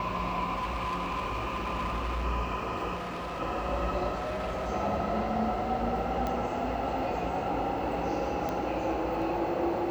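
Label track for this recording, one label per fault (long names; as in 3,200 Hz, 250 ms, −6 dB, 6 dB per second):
0.540000	2.250000	clipping −28 dBFS
2.950000	3.410000	clipping −33 dBFS
4.150000	4.690000	clipping −30 dBFS
6.270000	6.270000	click −19 dBFS
8.490000	8.490000	click −19 dBFS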